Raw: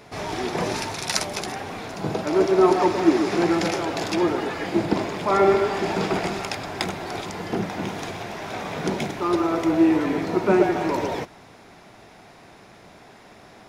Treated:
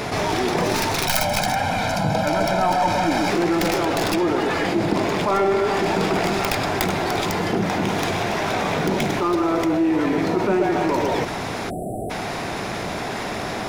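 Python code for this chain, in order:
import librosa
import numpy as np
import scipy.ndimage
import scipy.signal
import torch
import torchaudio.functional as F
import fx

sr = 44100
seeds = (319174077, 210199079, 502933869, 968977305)

y = fx.tracing_dist(x, sr, depth_ms=0.44)
y = fx.comb(y, sr, ms=1.3, depth=0.98, at=(1.07, 3.3))
y = fx.spec_erase(y, sr, start_s=11.7, length_s=0.4, low_hz=780.0, high_hz=7600.0)
y = fx.env_flatten(y, sr, amount_pct=70)
y = y * librosa.db_to_amplitude(-4.0)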